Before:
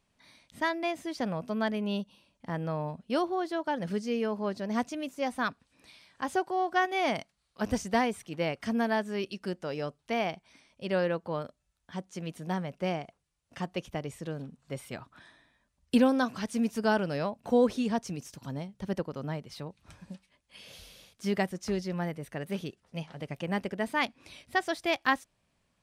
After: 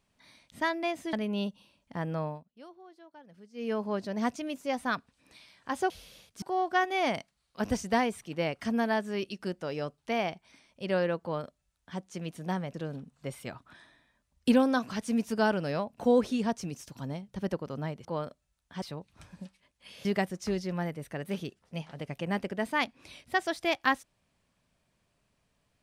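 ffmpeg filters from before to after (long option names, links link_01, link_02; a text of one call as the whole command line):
ffmpeg -i in.wav -filter_complex "[0:a]asplit=10[link_01][link_02][link_03][link_04][link_05][link_06][link_07][link_08][link_09][link_10];[link_01]atrim=end=1.132[link_11];[link_02]atrim=start=1.658:end=2.97,asetpts=PTS-STARTPTS,afade=type=out:start_time=1.112:duration=0.2:silence=0.0841395[link_12];[link_03]atrim=start=2.97:end=4.06,asetpts=PTS-STARTPTS,volume=-21.5dB[link_13];[link_04]atrim=start=4.06:end=6.432,asetpts=PTS-STARTPTS,afade=type=in:duration=0.2:silence=0.0841395[link_14];[link_05]atrim=start=20.738:end=21.262[link_15];[link_06]atrim=start=6.428:end=12.752[link_16];[link_07]atrim=start=14.198:end=19.512[link_17];[link_08]atrim=start=11.228:end=12.002[link_18];[link_09]atrim=start=19.508:end=20.742[link_19];[link_10]atrim=start=21.258[link_20];[link_12][link_13][link_14]concat=n=3:v=0:a=1[link_21];[link_11][link_21]acrossfade=duration=0.004:curve1=hsin:curve2=hsin[link_22];[link_22][link_15]acrossfade=duration=0.004:curve1=hsin:curve2=hsin[link_23];[link_23][link_16]acrossfade=duration=0.004:curve1=hsin:curve2=hsin[link_24];[link_24][link_17]acrossfade=duration=0.004:curve1=hsin:curve2=hsin[link_25];[link_25][link_18]acrossfade=duration=0.004:curve1=hsin:curve2=hsin[link_26];[link_26][link_19]acrossfade=duration=0.004:curve1=hsin:curve2=hsin[link_27];[link_27][link_20]acrossfade=duration=0.004:curve1=hsin:curve2=hsin" out.wav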